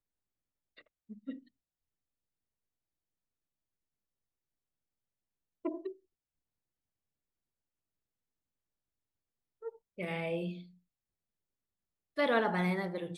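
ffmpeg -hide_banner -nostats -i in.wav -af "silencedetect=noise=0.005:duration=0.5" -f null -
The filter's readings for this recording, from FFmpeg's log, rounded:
silence_start: 0.00
silence_end: 0.78 | silence_duration: 0.78
silence_start: 1.39
silence_end: 5.65 | silence_duration: 4.26
silence_start: 5.92
silence_end: 9.63 | silence_duration: 3.70
silence_start: 10.63
silence_end: 12.17 | silence_duration: 1.55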